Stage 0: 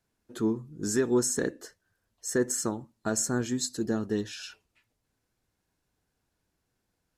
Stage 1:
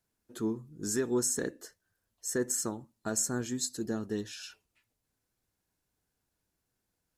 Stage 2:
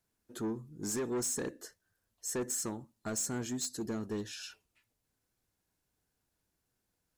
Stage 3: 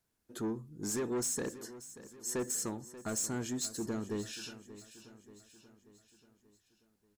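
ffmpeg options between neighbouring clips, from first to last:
-af "highshelf=f=7.9k:g=8.5,volume=-5dB"
-af "asoftclip=type=tanh:threshold=-30dB"
-af "aecho=1:1:584|1168|1752|2336|2920:0.168|0.0907|0.049|0.0264|0.0143"

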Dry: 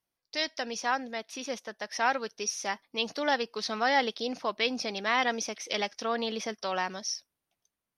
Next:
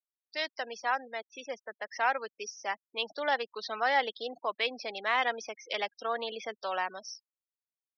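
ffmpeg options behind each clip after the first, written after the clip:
-filter_complex "[0:a]afftfilt=real='re*gte(hypot(re,im),0.0158)':imag='im*gte(hypot(re,im),0.0158)':win_size=1024:overlap=0.75,acrossover=split=400 4500:gain=0.141 1 0.0708[a][b][c];[a][b][c]amix=inputs=3:normalize=0,acontrast=82,volume=-7.5dB"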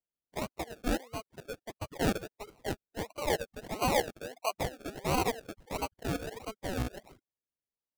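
-filter_complex "[0:a]acrossover=split=460 4100:gain=0.224 1 0.0631[a][b][c];[a][b][c]amix=inputs=3:normalize=0,acrusher=samples=35:mix=1:aa=0.000001:lfo=1:lforange=21:lforate=1.5"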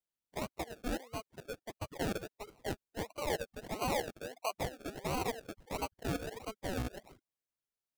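-af "alimiter=level_in=1dB:limit=-24dB:level=0:latency=1:release=35,volume=-1dB,volume=-2dB"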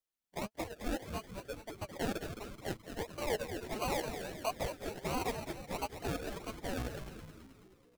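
-filter_complex "[0:a]flanger=delay=1.5:depth=4.3:regen=56:speed=1.3:shape=triangular,asplit=8[a][b][c][d][e][f][g][h];[b]adelay=214,afreqshift=-110,volume=-8dB[i];[c]adelay=428,afreqshift=-220,volume=-13.2dB[j];[d]adelay=642,afreqshift=-330,volume=-18.4dB[k];[e]adelay=856,afreqshift=-440,volume=-23.6dB[l];[f]adelay=1070,afreqshift=-550,volume=-28.8dB[m];[g]adelay=1284,afreqshift=-660,volume=-34dB[n];[h]adelay=1498,afreqshift=-770,volume=-39.2dB[o];[a][i][j][k][l][m][n][o]amix=inputs=8:normalize=0,volume=3.5dB"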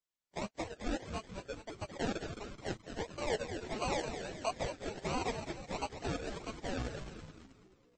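-filter_complex "[0:a]asplit=2[a][b];[b]acrusher=bits=7:mix=0:aa=0.000001,volume=-10dB[c];[a][c]amix=inputs=2:normalize=0,volume=-2dB" -ar 22050 -c:a libmp3lame -b:a 32k

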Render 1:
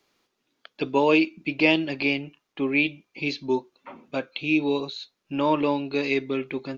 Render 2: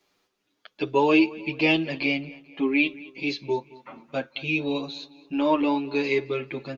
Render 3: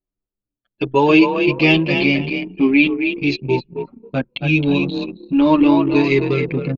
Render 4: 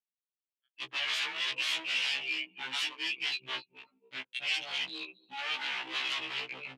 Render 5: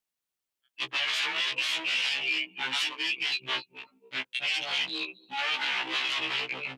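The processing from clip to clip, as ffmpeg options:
-filter_complex "[0:a]asplit=2[a][b];[b]adelay=219,lowpass=f=4.3k:p=1,volume=-20dB,asplit=2[c][d];[d]adelay=219,lowpass=f=4.3k:p=1,volume=0.47,asplit=2[e][f];[f]adelay=219,lowpass=f=4.3k:p=1,volume=0.47,asplit=2[g][h];[h]adelay=219,lowpass=f=4.3k:p=1,volume=0.47[i];[a][c][e][g][i]amix=inputs=5:normalize=0,asplit=2[j][k];[k]adelay=8,afreqshift=0.38[l];[j][l]amix=inputs=2:normalize=1,volume=2.5dB"
-filter_complex "[0:a]asplit=2[a][b];[b]asplit=4[c][d][e][f];[c]adelay=266,afreqshift=35,volume=-6dB[g];[d]adelay=532,afreqshift=70,volume=-15.6dB[h];[e]adelay=798,afreqshift=105,volume=-25.3dB[i];[f]adelay=1064,afreqshift=140,volume=-34.9dB[j];[g][h][i][j]amix=inputs=4:normalize=0[k];[a][k]amix=inputs=2:normalize=0,asubboost=boost=4.5:cutoff=240,anlmdn=39.8,volume=7dB"
-af "aeval=exprs='0.126*(abs(mod(val(0)/0.126+3,4)-2)-1)':c=same,bandpass=f=2.9k:t=q:w=2.4:csg=0,afftfilt=real='re*1.73*eq(mod(b,3),0)':imag='im*1.73*eq(mod(b,3),0)':win_size=2048:overlap=0.75"
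-af "alimiter=level_in=3dB:limit=-24dB:level=0:latency=1:release=85,volume=-3dB,volume=7.5dB"

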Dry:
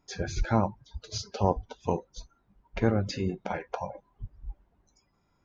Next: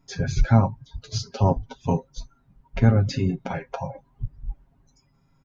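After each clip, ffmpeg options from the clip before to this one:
-af "lowshelf=f=270:t=q:w=1.5:g=6.5,aecho=1:1:7.4:0.69,volume=1.5dB"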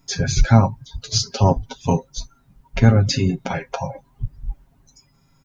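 -af "highshelf=f=3.3k:g=11.5,volume=4dB"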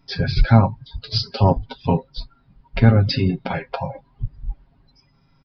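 -af "aresample=11025,aresample=44100"

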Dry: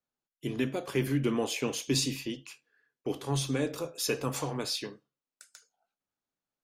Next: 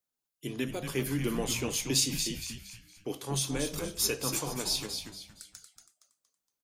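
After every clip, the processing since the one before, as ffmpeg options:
-filter_complex "[0:a]highshelf=f=4.6k:g=11.5,asplit=2[a][b];[b]asplit=4[c][d][e][f];[c]adelay=233,afreqshift=-110,volume=-6.5dB[g];[d]adelay=466,afreqshift=-220,volume=-15.4dB[h];[e]adelay=699,afreqshift=-330,volume=-24.2dB[i];[f]adelay=932,afreqshift=-440,volume=-33.1dB[j];[g][h][i][j]amix=inputs=4:normalize=0[k];[a][k]amix=inputs=2:normalize=0,volume=-3.5dB"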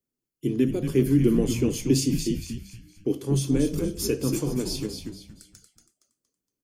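-af "lowshelf=f=520:t=q:w=1.5:g=12.5,bandreject=f=3.8k:w=10,volume=-2.5dB"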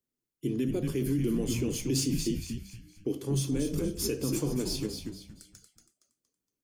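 -filter_complex "[0:a]acrossover=split=2900[a][b];[a]alimiter=limit=-19dB:level=0:latency=1:release=48[c];[b]acrusher=bits=4:mode=log:mix=0:aa=0.000001[d];[c][d]amix=inputs=2:normalize=0,volume=-2.5dB"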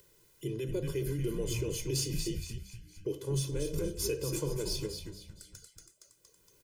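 -af "aecho=1:1:2:0.99,acompressor=mode=upward:threshold=-37dB:ratio=2.5,volume=-5dB"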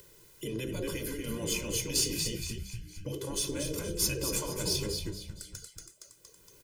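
-af "afftfilt=real='re*lt(hypot(re,im),0.1)':imag='im*lt(hypot(re,im),0.1)':win_size=1024:overlap=0.75,volume=7dB"

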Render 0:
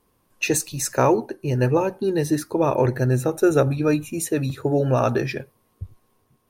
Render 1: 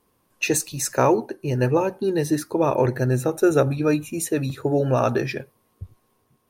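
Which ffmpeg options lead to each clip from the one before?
-af "lowshelf=f=65:g=-8"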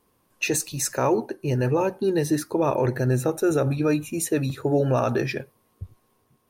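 -af "alimiter=limit=-13dB:level=0:latency=1:release=38"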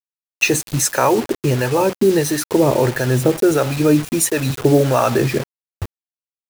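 -filter_complex "[0:a]asplit=2[a][b];[b]acompressor=threshold=-28dB:ratio=16,volume=0.5dB[c];[a][c]amix=inputs=2:normalize=0,acrossover=split=610[d][e];[d]aeval=exprs='val(0)*(1-0.7/2+0.7/2*cos(2*PI*1.5*n/s))':c=same[f];[e]aeval=exprs='val(0)*(1-0.7/2-0.7/2*cos(2*PI*1.5*n/s))':c=same[g];[f][g]amix=inputs=2:normalize=0,acrusher=bits=5:mix=0:aa=0.000001,volume=8dB"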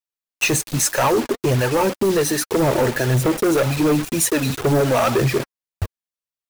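-af "flanger=delay=0.8:depth=4.1:regen=32:speed=1.9:shape=triangular,asoftclip=type=hard:threshold=-18dB,volume=4.5dB"

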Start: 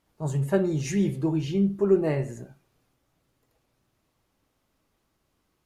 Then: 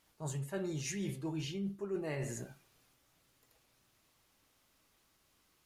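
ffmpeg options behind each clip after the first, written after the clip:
-af "tiltshelf=f=1.2k:g=-5.5,areverse,acompressor=threshold=-37dB:ratio=6,areverse,volume=1dB"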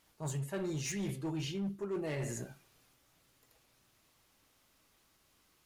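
-af "volume=34dB,asoftclip=hard,volume=-34dB,volume=2dB"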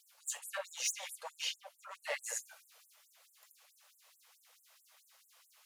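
-af "afftfilt=real='re*gte(b*sr/1024,450*pow(7400/450,0.5+0.5*sin(2*PI*4.6*pts/sr)))':imag='im*gte(b*sr/1024,450*pow(7400/450,0.5+0.5*sin(2*PI*4.6*pts/sr)))':win_size=1024:overlap=0.75,volume=6.5dB"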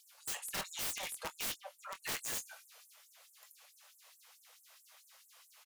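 -filter_complex "[0:a]aeval=exprs='(mod(63.1*val(0)+1,2)-1)/63.1':c=same,asplit=2[a][b];[b]adelay=24,volume=-13dB[c];[a][c]amix=inputs=2:normalize=0,volume=3.5dB"

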